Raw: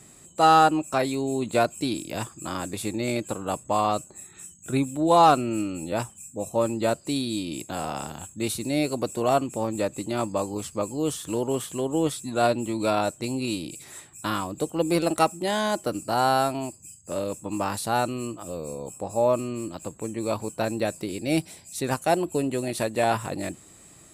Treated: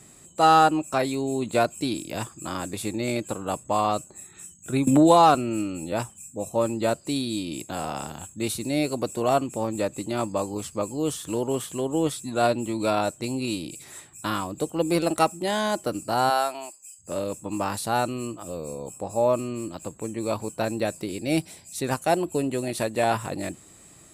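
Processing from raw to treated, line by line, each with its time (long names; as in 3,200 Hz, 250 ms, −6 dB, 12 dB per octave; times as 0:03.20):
0:04.87–0:05.35: multiband upward and downward compressor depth 100%
0:16.29–0:16.98: high-pass filter 450 Hz → 1,000 Hz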